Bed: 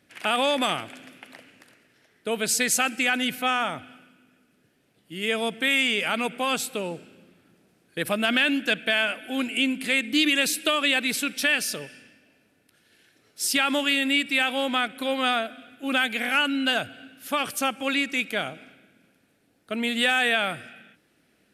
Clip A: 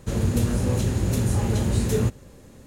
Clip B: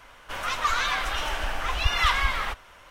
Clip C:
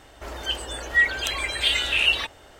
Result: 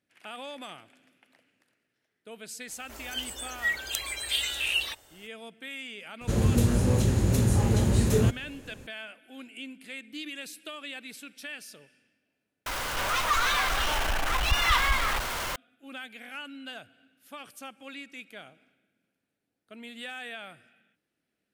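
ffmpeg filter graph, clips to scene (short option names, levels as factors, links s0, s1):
-filter_complex "[0:a]volume=0.133[s0];[3:a]aemphasis=mode=production:type=75fm[s1];[2:a]aeval=exprs='val(0)+0.5*0.0668*sgn(val(0))':c=same[s2];[s0]asplit=2[s3][s4];[s3]atrim=end=12.664[s5];[s2]atrim=end=2.9,asetpts=PTS-STARTPTS,volume=0.668[s6];[s4]atrim=start=15.556[s7];[s1]atrim=end=2.59,asetpts=PTS-STARTPTS,volume=0.282,afade=t=in:d=0.004:c=hsin,afade=t=out:st=2.586:d=0.004:c=hsin,adelay=2680[s8];[1:a]atrim=end=2.66,asetpts=PTS-STARTPTS,volume=0.944,afade=t=in:d=0.004:c=hsin,afade=t=out:st=2.656:d=0.004:c=hsin,adelay=6210[s9];[s5][s6]acrossfade=d=0.004:c1=hsin:c2=hsin[s10];[s10][s7]acrossfade=d=0.004:c1=hsin:c2=hsin[s11];[s11][s8][s9]amix=inputs=3:normalize=0"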